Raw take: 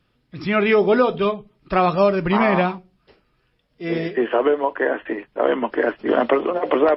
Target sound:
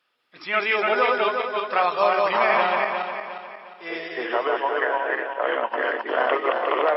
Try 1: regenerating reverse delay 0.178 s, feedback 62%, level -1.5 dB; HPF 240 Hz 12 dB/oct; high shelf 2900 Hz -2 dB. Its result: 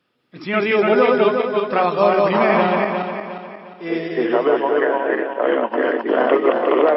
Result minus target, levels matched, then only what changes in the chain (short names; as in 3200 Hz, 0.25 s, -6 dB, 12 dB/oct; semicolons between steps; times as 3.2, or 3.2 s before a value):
250 Hz band +10.0 dB
change: HPF 770 Hz 12 dB/oct